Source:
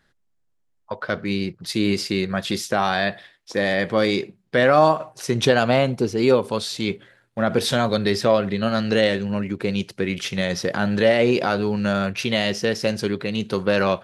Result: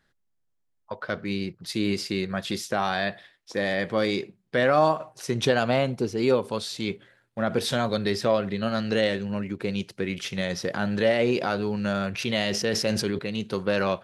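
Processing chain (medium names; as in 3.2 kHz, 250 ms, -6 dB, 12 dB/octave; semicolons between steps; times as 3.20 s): 12.10–13.19 s: decay stretcher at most 32 dB/s; trim -5 dB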